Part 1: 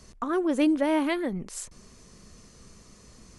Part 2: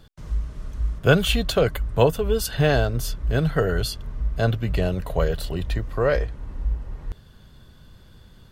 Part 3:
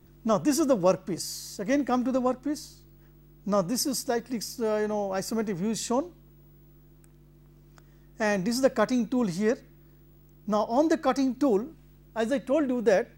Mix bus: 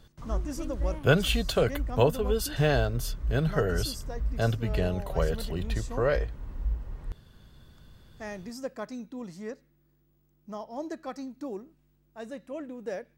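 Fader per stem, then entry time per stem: -19.5 dB, -5.0 dB, -13.0 dB; 0.00 s, 0.00 s, 0.00 s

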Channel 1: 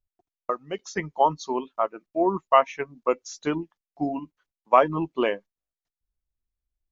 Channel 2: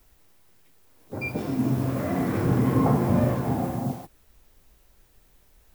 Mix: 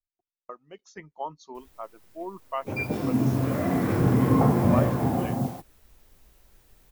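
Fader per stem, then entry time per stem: -14.0 dB, +1.0 dB; 0.00 s, 1.55 s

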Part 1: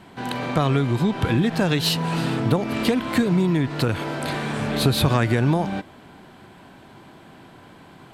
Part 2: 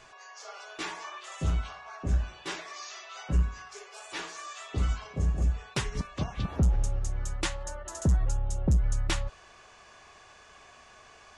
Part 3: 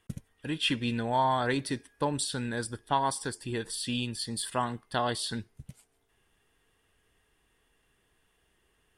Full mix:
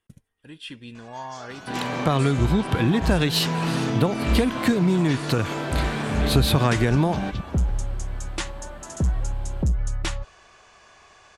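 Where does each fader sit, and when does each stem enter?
-0.5 dB, +1.5 dB, -10.0 dB; 1.50 s, 0.95 s, 0.00 s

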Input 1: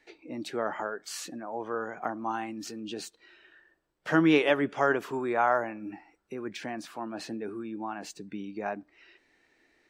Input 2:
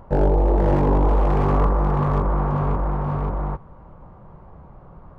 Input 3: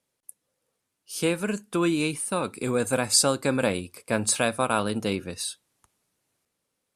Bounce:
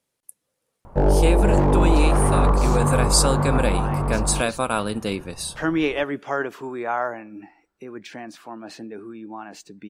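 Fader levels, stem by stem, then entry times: 0.0 dB, +0.5 dB, +1.0 dB; 1.50 s, 0.85 s, 0.00 s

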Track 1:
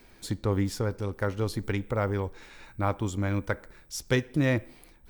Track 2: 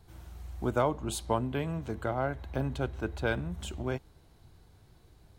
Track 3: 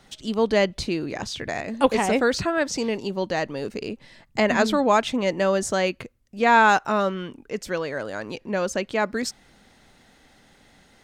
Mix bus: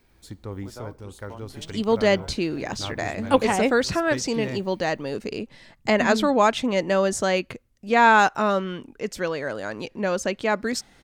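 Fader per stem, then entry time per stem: -8.0 dB, -13.5 dB, +0.5 dB; 0.00 s, 0.00 s, 1.50 s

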